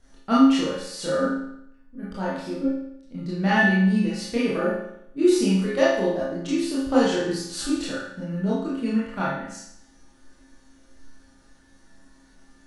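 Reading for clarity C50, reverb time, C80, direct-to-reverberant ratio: −1.0 dB, 0.75 s, 4.0 dB, −9.5 dB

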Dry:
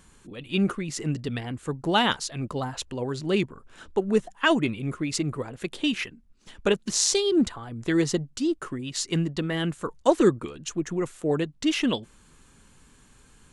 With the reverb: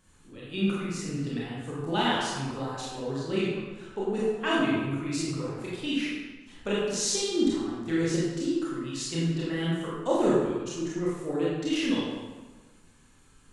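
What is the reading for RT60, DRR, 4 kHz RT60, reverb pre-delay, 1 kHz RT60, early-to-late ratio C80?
1.3 s, −7.5 dB, 0.90 s, 23 ms, 1.3 s, 0.5 dB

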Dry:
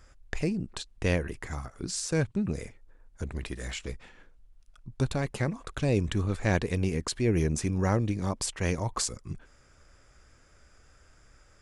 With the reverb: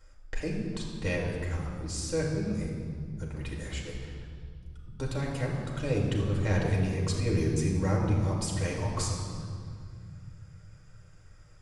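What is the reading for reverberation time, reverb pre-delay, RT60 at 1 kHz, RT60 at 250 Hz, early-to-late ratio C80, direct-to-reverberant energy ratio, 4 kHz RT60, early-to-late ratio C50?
2.0 s, 4 ms, 1.9 s, 3.4 s, 4.0 dB, −3.0 dB, 1.8 s, 2.5 dB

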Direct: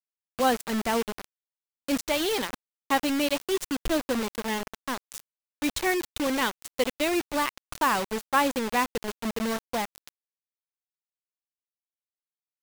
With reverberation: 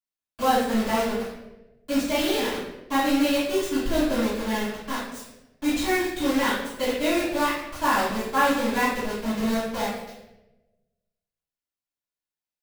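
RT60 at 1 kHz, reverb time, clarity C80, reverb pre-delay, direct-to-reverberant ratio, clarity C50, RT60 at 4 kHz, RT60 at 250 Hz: 0.80 s, 1.0 s, 4.0 dB, 3 ms, −15.5 dB, 0.5 dB, 0.70 s, 1.2 s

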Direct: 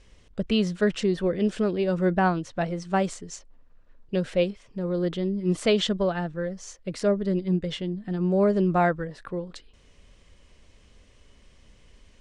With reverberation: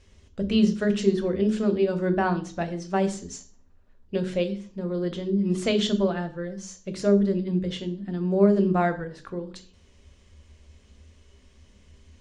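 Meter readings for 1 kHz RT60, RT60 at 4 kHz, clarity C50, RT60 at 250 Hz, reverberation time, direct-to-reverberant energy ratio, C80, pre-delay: 0.45 s, 0.40 s, 13.5 dB, 0.50 s, 0.45 s, 7.0 dB, 18.0 dB, 3 ms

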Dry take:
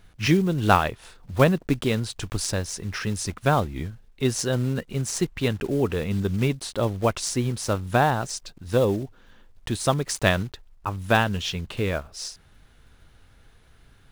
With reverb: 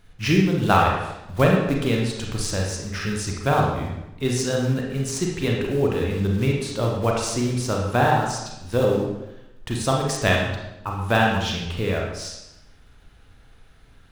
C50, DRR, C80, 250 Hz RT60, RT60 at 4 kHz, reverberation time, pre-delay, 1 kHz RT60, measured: 1.5 dB, −1.5 dB, 4.5 dB, 0.95 s, 0.80 s, 0.90 s, 31 ms, 0.85 s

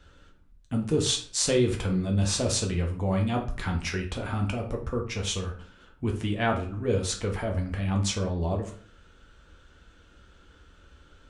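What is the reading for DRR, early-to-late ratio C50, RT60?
1.0 dB, 9.0 dB, 0.50 s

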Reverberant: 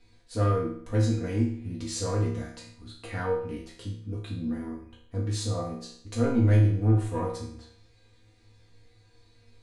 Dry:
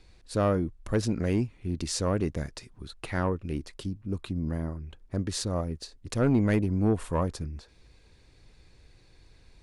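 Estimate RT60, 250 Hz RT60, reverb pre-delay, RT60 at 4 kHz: 0.60 s, 0.60 s, 4 ms, 0.55 s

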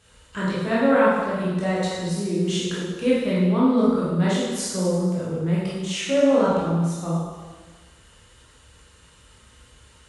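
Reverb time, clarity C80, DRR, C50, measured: 1.4 s, 1.0 dB, −8.5 dB, −1.5 dB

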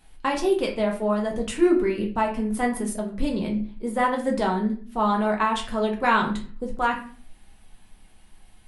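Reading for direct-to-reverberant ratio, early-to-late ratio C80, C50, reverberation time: −0.5 dB, 13.0 dB, 8.5 dB, 0.40 s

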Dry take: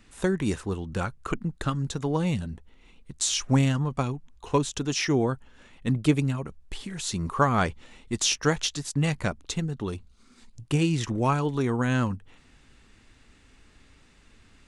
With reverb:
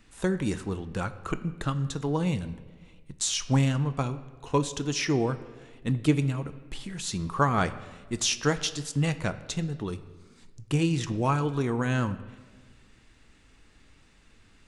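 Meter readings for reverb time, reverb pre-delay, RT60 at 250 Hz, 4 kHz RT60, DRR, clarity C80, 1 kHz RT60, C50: 1.4 s, 6 ms, 1.6 s, 1.0 s, 10.5 dB, 15.5 dB, 1.2 s, 14.0 dB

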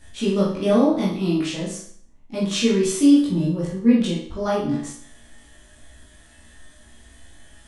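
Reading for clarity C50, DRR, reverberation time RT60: 3.5 dB, −7.0 dB, 0.60 s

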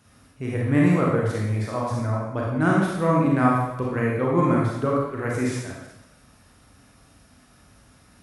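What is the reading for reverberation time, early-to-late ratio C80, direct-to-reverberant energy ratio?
0.90 s, 3.0 dB, −4.0 dB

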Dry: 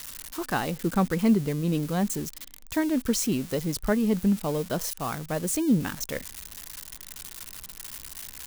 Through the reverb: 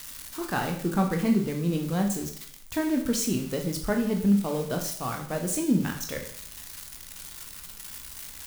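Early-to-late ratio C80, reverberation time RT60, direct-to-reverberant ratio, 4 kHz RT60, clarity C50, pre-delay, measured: 11.0 dB, 0.55 s, 2.5 dB, 0.55 s, 7.5 dB, 6 ms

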